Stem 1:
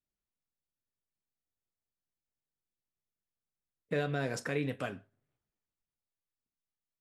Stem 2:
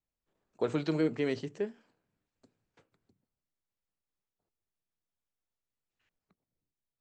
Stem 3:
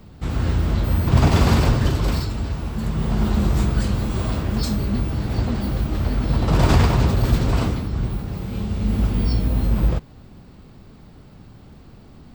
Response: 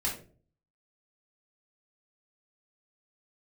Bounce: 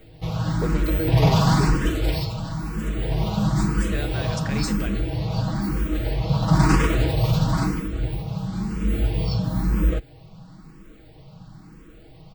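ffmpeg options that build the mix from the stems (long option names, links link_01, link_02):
-filter_complex "[0:a]lowpass=4600,crystalizer=i=6:c=0,volume=-2.5dB[link_01];[1:a]volume=1.5dB[link_02];[2:a]aecho=1:1:6.3:0.86,asplit=2[link_03][link_04];[link_04]afreqshift=1[link_05];[link_03][link_05]amix=inputs=2:normalize=1,volume=0dB[link_06];[link_01][link_02][link_06]amix=inputs=3:normalize=0"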